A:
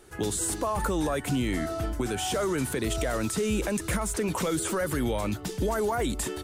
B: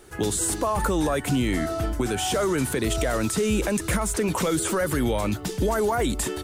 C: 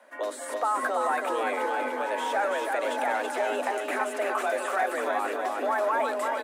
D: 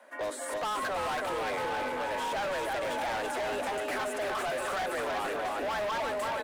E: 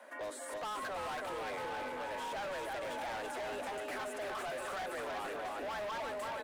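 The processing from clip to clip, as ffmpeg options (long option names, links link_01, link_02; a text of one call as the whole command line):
ffmpeg -i in.wav -af "acrusher=bits=11:mix=0:aa=0.000001,volume=4dB" out.wav
ffmpeg -i in.wav -filter_complex "[0:a]afreqshift=200,acrossover=split=590 2300:gain=0.126 1 0.141[link_01][link_02][link_03];[link_01][link_02][link_03]amix=inputs=3:normalize=0,aecho=1:1:330|627|894.3|1135|1351:0.631|0.398|0.251|0.158|0.1" out.wav
ffmpeg -i in.wav -af "volume=30dB,asoftclip=hard,volume=-30dB" out.wav
ffmpeg -i in.wav -af "alimiter=level_in=14.5dB:limit=-24dB:level=0:latency=1,volume=-14.5dB,volume=1dB" out.wav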